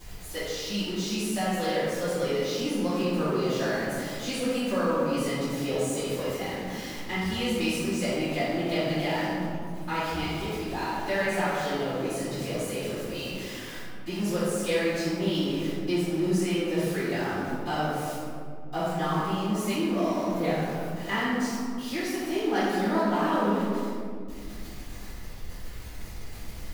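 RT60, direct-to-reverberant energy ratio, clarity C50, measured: 2.2 s, −12.5 dB, −3.5 dB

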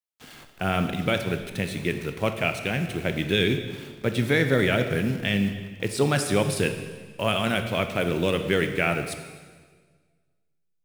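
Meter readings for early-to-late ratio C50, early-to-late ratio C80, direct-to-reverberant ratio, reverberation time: 8.5 dB, 10.0 dB, 7.0 dB, 1.6 s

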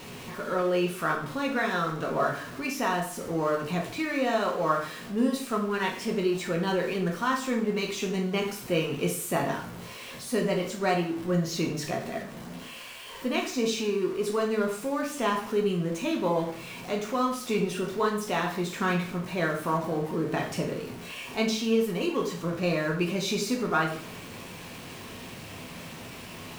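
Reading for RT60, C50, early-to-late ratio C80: 0.50 s, 7.0 dB, 10.5 dB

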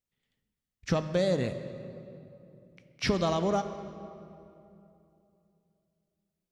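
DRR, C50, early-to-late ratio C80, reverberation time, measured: 9.0 dB, 10.0 dB, 11.0 dB, 2.8 s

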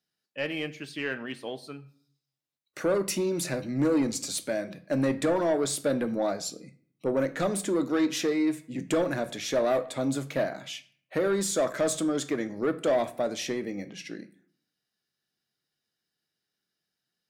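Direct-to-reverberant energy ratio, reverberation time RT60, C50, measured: 10.5 dB, 0.55 s, 17.0 dB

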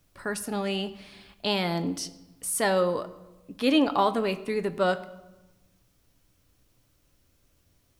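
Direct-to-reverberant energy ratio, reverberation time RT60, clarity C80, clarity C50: 10.0 dB, 1.1 s, 17.5 dB, 16.5 dB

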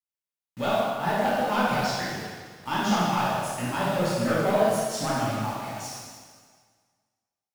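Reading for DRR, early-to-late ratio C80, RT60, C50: −8.5 dB, 0.0 dB, 1.7 s, −3.0 dB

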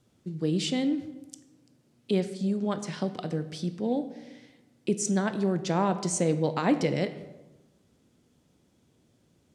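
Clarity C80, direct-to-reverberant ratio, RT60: 14.0 dB, 10.5 dB, 1.1 s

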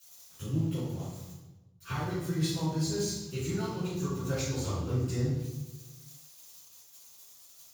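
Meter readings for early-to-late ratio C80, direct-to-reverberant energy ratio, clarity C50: 2.5 dB, −16.0 dB, −1.5 dB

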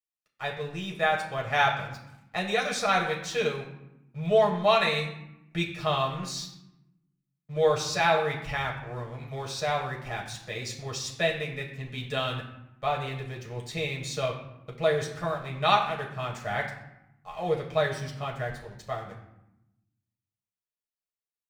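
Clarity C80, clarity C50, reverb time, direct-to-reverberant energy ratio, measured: 10.0 dB, 7.5 dB, 0.90 s, −2.0 dB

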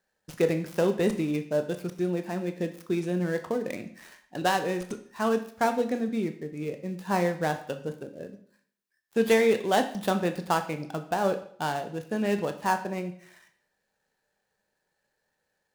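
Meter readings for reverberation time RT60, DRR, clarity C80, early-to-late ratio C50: 0.60 s, 7.0 dB, 14.5 dB, 11.5 dB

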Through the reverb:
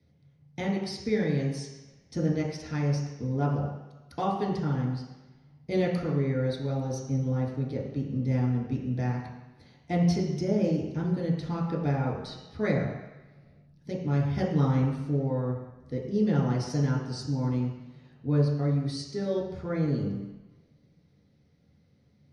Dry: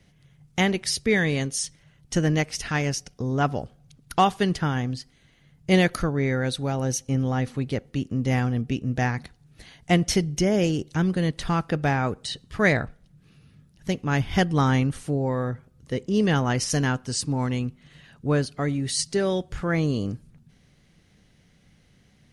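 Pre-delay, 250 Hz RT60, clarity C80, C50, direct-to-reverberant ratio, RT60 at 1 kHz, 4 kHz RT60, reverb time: 3 ms, 1.0 s, 5.5 dB, 2.5 dB, −5.0 dB, 1.2 s, 1.3 s, 1.1 s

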